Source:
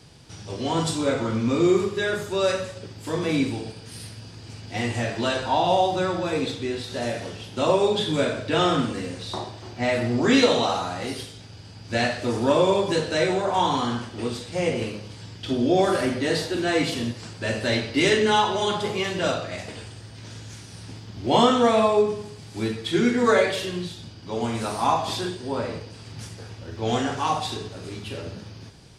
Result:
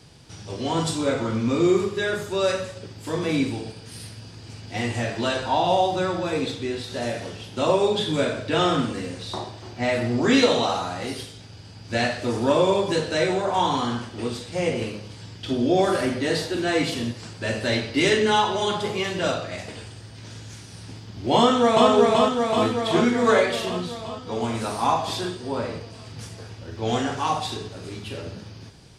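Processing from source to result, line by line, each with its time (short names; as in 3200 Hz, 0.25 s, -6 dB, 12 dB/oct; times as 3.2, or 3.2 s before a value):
21.38–21.9 echo throw 0.38 s, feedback 70%, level -1.5 dB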